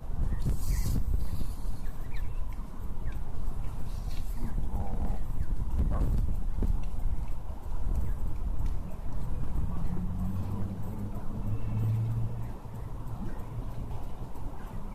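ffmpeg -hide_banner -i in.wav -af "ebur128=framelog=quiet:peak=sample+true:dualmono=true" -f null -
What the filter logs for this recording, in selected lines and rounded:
Integrated loudness:
  I:         -33.2 LUFS
  Threshold: -43.2 LUFS
Loudness range:
  LRA:         4.1 LU
  Threshold: -53.1 LUFS
  LRA low:   -35.7 LUFS
  LRA high:  -31.7 LUFS
Sample peak:
  Peak:      -20.2 dBFS
True peak:
  Peak:      -20.0 dBFS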